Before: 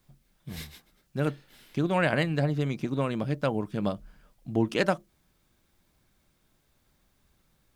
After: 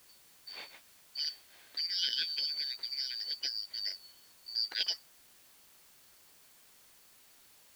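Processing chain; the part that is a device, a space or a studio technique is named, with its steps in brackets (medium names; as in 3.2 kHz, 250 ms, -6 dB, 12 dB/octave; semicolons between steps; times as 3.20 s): split-band scrambled radio (four frequency bands reordered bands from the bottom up 4321; band-pass 300–3300 Hz; white noise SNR 21 dB); trim -2 dB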